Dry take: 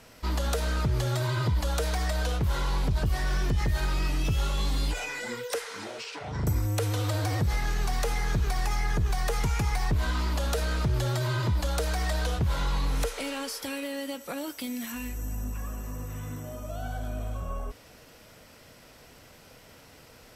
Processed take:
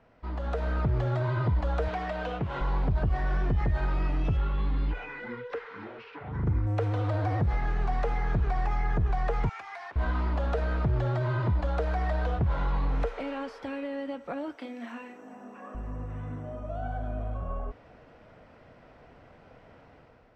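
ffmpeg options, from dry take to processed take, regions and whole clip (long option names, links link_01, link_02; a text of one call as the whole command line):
ffmpeg -i in.wav -filter_complex "[0:a]asettb=1/sr,asplit=3[link_01][link_02][link_03];[link_01]atrim=end=1.884[link_04];[link_02]atrim=start=1.88:end=2.61,asetpts=PTS-STARTPTS,afade=type=in:duration=0.004:curve=qsin,afade=type=out:start_time=0.726:duration=0.004:curve=qsin,highpass=120,equalizer=frequency=2800:width_type=o:width=0.57:gain=6.5[link_05];[link_03]atrim=start=2.606[link_06];[link_04][link_05]acrossfade=duration=0.004:curve1=hsin:curve2=qsin[link_07];[link_07][link_06]acrossfade=duration=0.004:curve1=qsin:curve2=hsin,asettb=1/sr,asplit=3[link_08][link_09][link_10];[link_08]atrim=end=4.374[link_11];[link_09]atrim=start=4.37:end=6.67,asetpts=PTS-STARTPTS,afade=type=in:duration=0.004:curve=qsin,afade=type=out:start_time=2.296:duration=0.004:curve=qsin,lowpass=3500,equalizer=frequency=660:width=2.4:gain=-11[link_12];[link_10]atrim=start=6.666[link_13];[link_11][link_12]acrossfade=duration=0.004:curve1=hsin:curve2=qsin[link_14];[link_14][link_13]acrossfade=duration=0.004:curve1=qsin:curve2=hsin,asettb=1/sr,asplit=3[link_15][link_16][link_17];[link_15]atrim=end=9.494[link_18];[link_16]atrim=start=9.49:end=9.96,asetpts=PTS-STARTPTS,afade=type=in:duration=0.004:curve=qsin,afade=type=out:start_time=0.466:duration=0.004:curve=qsin,highpass=1300,afreqshift=-47[link_19];[link_17]atrim=start=9.956[link_20];[link_18][link_19]acrossfade=duration=0.004:curve1=hsin:curve2=qsin[link_21];[link_21][link_20]acrossfade=duration=0.004:curve1=qsin:curve2=hsin,asettb=1/sr,asplit=3[link_22][link_23][link_24];[link_22]atrim=end=14.564[link_25];[link_23]atrim=start=14.56:end=15.75,asetpts=PTS-STARTPTS,afade=type=in:duration=0.004:curve=qsin,afade=type=out:start_time=1.186:duration=0.004:curve=qsin,highpass=frequency=260:width=0.5412,highpass=frequency=260:width=1.3066,asplit=2[link_26][link_27];[link_27]adelay=34,volume=-5dB[link_28];[link_26][link_28]amix=inputs=2:normalize=0,atrim=end_sample=52479[link_29];[link_24]atrim=start=15.746[link_30];[link_25][link_29]acrossfade=duration=0.004:curve1=hsin:curve2=qsin[link_31];[link_31][link_30]acrossfade=duration=0.004:curve1=qsin:curve2=hsin,lowpass=1700,equalizer=frequency=710:width_type=o:width=0.33:gain=4,dynaudnorm=framelen=200:gausssize=5:maxgain=7.5dB,volume=-7.5dB" out.wav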